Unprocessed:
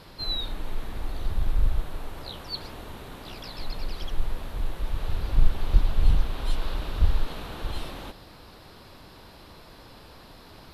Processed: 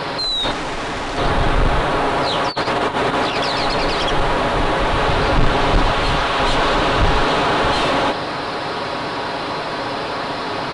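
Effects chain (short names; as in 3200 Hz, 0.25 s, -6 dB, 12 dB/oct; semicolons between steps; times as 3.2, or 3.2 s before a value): comb 7.2 ms, depth 38%; 2.48–3.38 negative-ratio compressor -40 dBFS, ratio -0.5; 5.91–6.4 low shelf 450 Hz -9 dB; overdrive pedal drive 39 dB, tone 1300 Hz, clips at -4 dBFS; 0.51–1.18 hard clip -22.5 dBFS, distortion -16 dB; downsampling 22050 Hz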